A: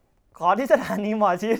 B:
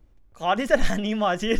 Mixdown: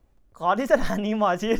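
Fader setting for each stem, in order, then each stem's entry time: −4.5, −6.5 decibels; 0.00, 0.00 seconds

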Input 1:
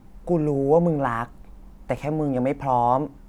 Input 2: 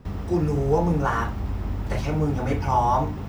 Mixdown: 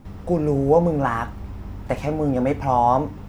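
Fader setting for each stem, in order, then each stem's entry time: +1.5, −6.0 decibels; 0.00, 0.00 seconds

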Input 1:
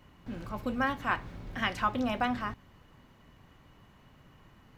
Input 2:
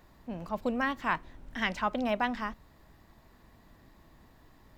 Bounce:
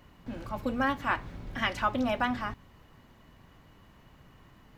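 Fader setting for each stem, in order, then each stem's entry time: +0.5, −5.5 decibels; 0.00, 0.00 seconds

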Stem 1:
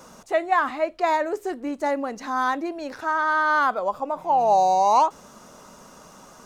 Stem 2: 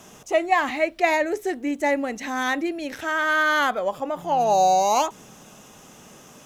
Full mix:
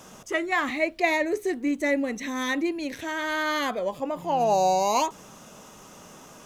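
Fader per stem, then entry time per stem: −4.0, −2.5 decibels; 0.00, 0.00 seconds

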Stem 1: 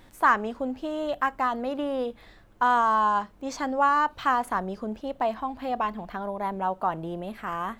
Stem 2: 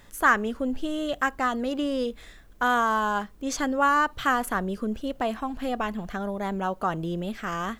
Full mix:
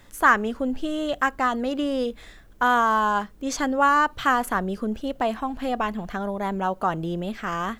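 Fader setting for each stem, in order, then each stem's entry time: −7.5, 0.0 decibels; 0.00, 0.00 seconds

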